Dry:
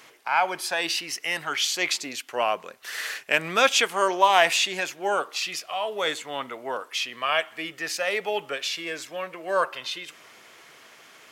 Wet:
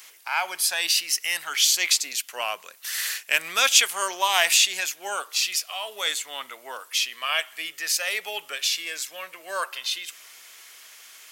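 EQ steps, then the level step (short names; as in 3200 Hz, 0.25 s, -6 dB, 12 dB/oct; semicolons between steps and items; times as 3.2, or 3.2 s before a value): tilt +5 dB/oct; -5.0 dB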